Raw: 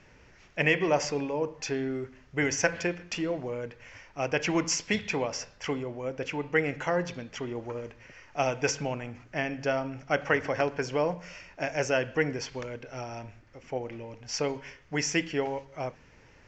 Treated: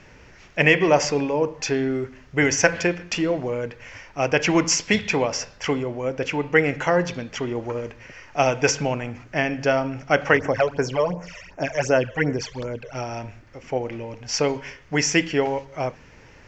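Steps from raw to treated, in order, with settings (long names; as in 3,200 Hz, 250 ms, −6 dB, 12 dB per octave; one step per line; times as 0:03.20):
0:10.37–0:12.95: all-pass phaser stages 12, 2.7 Hz, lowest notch 240–4,200 Hz
level +8 dB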